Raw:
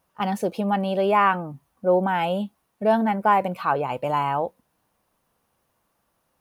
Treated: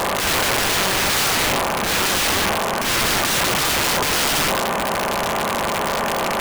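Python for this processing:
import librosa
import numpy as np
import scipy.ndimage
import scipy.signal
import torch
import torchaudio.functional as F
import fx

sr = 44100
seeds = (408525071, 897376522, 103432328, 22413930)

y = fx.bin_compress(x, sr, power=0.2)
y = (np.mod(10.0 ** (14.0 / 20.0) * y + 1.0, 2.0) - 1.0) / 10.0 ** (14.0 / 20.0)
y = fx.transient(y, sr, attack_db=-11, sustain_db=9)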